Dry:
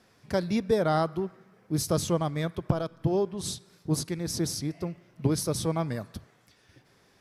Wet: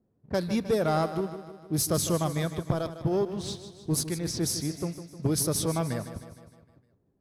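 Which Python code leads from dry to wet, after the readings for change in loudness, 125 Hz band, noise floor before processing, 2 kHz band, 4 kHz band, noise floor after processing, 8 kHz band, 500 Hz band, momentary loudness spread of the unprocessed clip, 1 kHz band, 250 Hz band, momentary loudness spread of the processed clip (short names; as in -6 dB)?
+0.5 dB, 0.0 dB, -63 dBFS, 0.0 dB, +1.5 dB, -71 dBFS, +4.0 dB, -0.5 dB, 11 LU, -0.5 dB, 0.0 dB, 10 LU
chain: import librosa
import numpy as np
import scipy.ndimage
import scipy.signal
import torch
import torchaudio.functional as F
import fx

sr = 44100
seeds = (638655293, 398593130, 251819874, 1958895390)

p1 = fx.env_lowpass(x, sr, base_hz=350.0, full_db=-25.5)
p2 = fx.high_shelf(p1, sr, hz=9100.0, db=12.0)
p3 = fx.leveller(p2, sr, passes=1)
p4 = p3 + fx.echo_feedback(p3, sr, ms=154, feedback_pct=55, wet_db=-12.0, dry=0)
y = p4 * 10.0 ** (-3.5 / 20.0)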